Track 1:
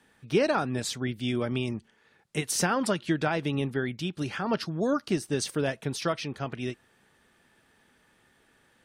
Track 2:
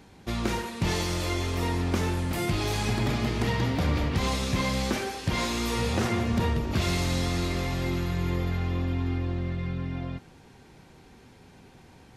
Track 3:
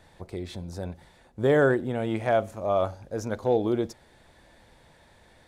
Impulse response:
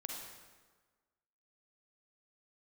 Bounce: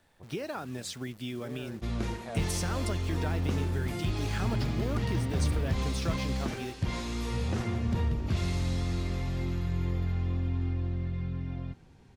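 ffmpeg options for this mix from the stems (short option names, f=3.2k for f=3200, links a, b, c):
-filter_complex "[0:a]acompressor=threshold=-29dB:ratio=6,acrusher=bits=9:dc=4:mix=0:aa=0.000001,volume=-4dB,asplit=2[a][b];[1:a]lowpass=11k,lowshelf=f=180:g=10.5,adelay=1550,volume=-9.5dB[c];[2:a]acompressor=threshold=-34dB:ratio=1.5,volume=-12.5dB[d];[b]apad=whole_len=241655[e];[d][e]sidechaincompress=threshold=-40dB:ratio=8:attack=16:release=324[f];[a][c][f]amix=inputs=3:normalize=0"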